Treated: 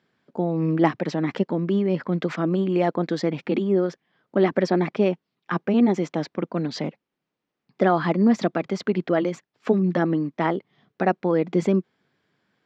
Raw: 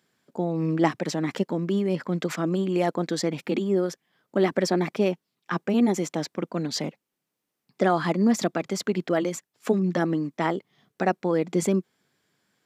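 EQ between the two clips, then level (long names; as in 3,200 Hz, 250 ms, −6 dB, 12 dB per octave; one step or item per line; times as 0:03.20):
high-frequency loss of the air 190 metres
+3.0 dB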